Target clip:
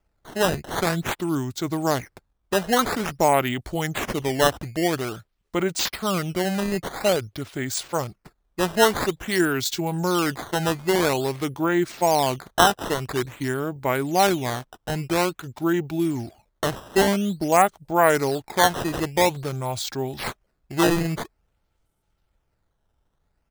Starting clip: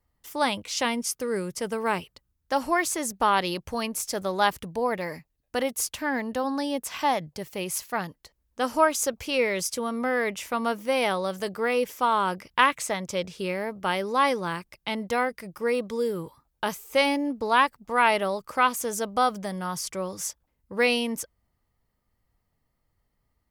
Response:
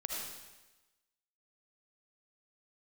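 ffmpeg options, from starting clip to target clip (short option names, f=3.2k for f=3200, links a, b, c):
-af "asetrate=31183,aresample=44100,atempo=1.41421,acrusher=samples=11:mix=1:aa=0.000001:lfo=1:lforange=17.6:lforate=0.49,volume=3.5dB"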